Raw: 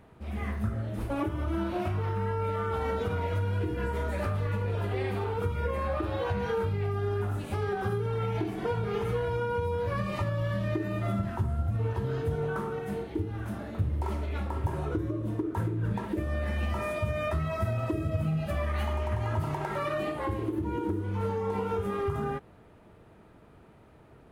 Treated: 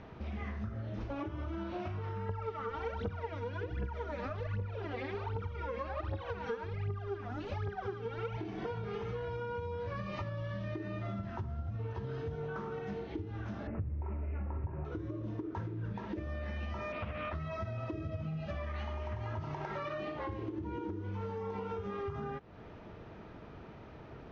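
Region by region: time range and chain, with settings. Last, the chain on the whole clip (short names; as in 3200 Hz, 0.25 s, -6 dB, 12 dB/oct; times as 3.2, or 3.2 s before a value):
2.29–8.37 high shelf 4300 Hz -5.5 dB + phaser 1.3 Hz, delay 4.4 ms, feedback 79%
13.67–14.85 tilt -2 dB/oct + careless resampling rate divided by 8×, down none, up filtered
16.92–17.35 LPF 4200 Hz 24 dB/oct + comb 4 ms, depth 43% + Doppler distortion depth 0.43 ms
whole clip: elliptic low-pass 6000 Hz, stop band 40 dB; compressor 4:1, threshold -45 dBFS; gain +6 dB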